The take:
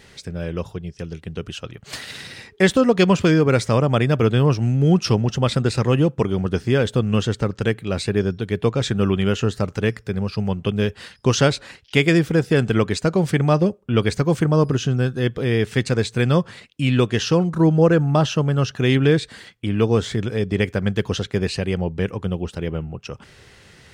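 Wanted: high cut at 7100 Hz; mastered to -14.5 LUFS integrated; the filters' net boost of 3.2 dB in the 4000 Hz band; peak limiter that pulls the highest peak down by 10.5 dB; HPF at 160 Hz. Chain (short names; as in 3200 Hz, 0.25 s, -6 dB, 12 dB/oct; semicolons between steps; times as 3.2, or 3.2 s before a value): HPF 160 Hz; LPF 7100 Hz; bell 4000 Hz +4.5 dB; gain +8.5 dB; limiter -1 dBFS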